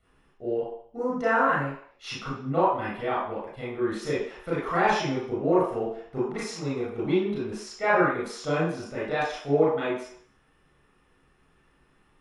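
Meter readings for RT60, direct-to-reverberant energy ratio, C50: 0.60 s, -9.0 dB, 0.0 dB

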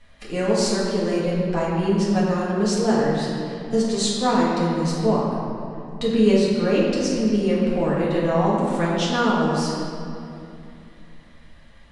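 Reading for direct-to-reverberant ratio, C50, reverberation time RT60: -7.5 dB, -1.5 dB, 2.7 s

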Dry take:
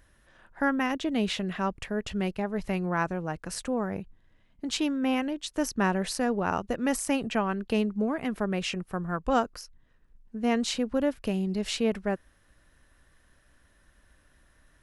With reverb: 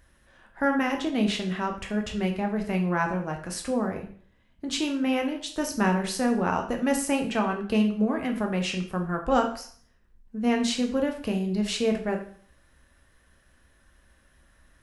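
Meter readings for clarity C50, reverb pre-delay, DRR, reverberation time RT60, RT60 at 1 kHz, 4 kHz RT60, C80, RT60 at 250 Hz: 9.0 dB, 5 ms, 2.5 dB, 0.50 s, 0.50 s, 0.50 s, 12.5 dB, 0.50 s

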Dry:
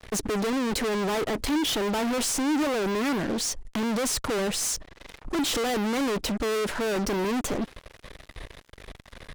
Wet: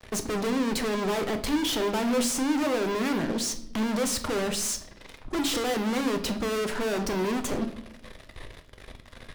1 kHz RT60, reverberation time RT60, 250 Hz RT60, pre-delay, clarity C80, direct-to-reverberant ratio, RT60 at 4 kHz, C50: 0.70 s, 0.75 s, 1.1 s, 8 ms, 15.5 dB, 6.5 dB, 0.60 s, 12.0 dB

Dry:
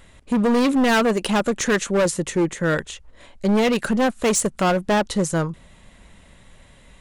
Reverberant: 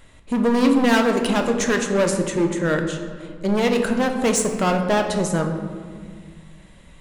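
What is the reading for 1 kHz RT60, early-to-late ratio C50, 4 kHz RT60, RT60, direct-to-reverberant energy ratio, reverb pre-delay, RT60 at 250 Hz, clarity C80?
1.6 s, 6.5 dB, 0.95 s, 1.8 s, 4.0 dB, 3 ms, 2.7 s, 8.0 dB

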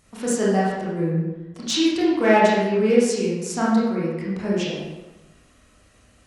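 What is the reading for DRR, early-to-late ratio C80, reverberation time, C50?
-7.5 dB, 3.0 dB, 1.1 s, -1.5 dB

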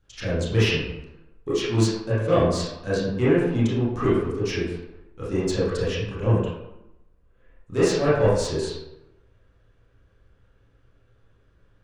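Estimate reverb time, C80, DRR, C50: 0.90 s, 3.5 dB, -11.5 dB, -1.0 dB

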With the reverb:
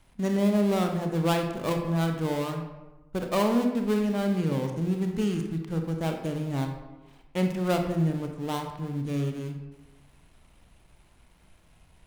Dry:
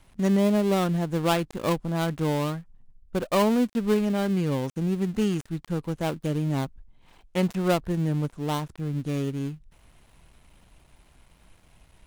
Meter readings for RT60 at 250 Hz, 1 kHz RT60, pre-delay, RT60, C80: 1.2 s, 1.1 s, 25 ms, 1.1 s, 8.0 dB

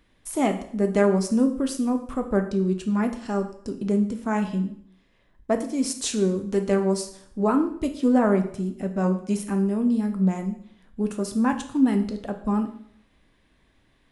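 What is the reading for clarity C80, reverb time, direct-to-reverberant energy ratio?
14.0 dB, 0.65 s, 6.0 dB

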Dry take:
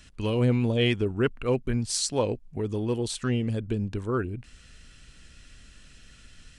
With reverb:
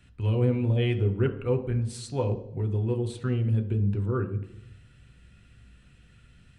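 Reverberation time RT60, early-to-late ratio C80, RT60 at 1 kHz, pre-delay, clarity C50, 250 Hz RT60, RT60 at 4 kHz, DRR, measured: 0.80 s, 14.5 dB, 0.70 s, 3 ms, 11.5 dB, 1.0 s, 0.65 s, 4.0 dB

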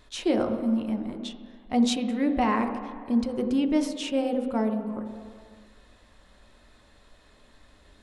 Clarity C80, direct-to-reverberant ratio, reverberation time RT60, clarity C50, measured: 8.5 dB, 4.5 dB, not exponential, 7.5 dB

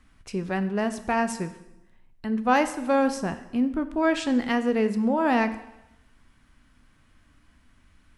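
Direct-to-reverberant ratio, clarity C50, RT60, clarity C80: 10.0 dB, 13.0 dB, 0.85 s, 15.0 dB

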